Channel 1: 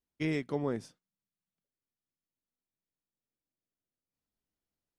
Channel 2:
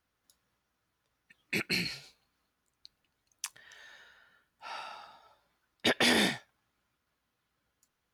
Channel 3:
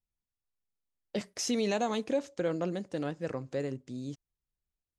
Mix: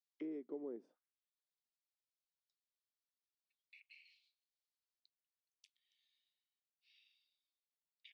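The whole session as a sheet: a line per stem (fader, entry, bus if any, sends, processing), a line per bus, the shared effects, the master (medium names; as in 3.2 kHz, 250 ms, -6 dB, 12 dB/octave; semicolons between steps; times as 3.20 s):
-0.5 dB, 0.00 s, no send, compression 6:1, threshold -37 dBFS, peak gain reduction 10 dB
-13.5 dB, 2.20 s, no send, Chebyshev high-pass 2.1 kHz, order 5; treble shelf 2.9 kHz -12 dB; compression 6:1, threshold -44 dBFS, peak gain reduction 12.5 dB
mute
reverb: none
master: auto-wah 360–4300 Hz, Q 2.3, down, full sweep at -42.5 dBFS; high-pass 230 Hz 24 dB/octave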